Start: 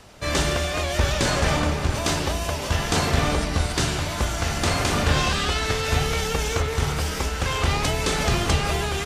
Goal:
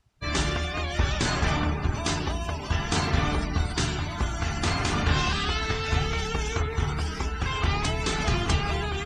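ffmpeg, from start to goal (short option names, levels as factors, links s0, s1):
-af "equalizer=f=540:w=4.2:g=-11,afftdn=nr=23:nf=-33,volume=0.75"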